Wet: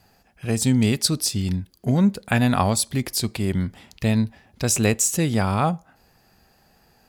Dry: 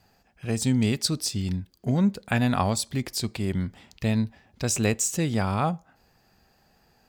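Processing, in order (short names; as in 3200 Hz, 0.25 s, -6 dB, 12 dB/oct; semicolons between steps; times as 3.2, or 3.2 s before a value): bell 11000 Hz +9 dB 0.33 oct; gain +4 dB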